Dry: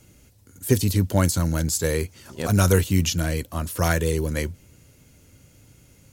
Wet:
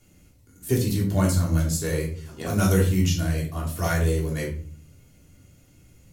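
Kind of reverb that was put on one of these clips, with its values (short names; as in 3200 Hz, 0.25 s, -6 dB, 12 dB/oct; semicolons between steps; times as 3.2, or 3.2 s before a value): shoebox room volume 420 m³, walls furnished, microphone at 3.3 m; gain -8.5 dB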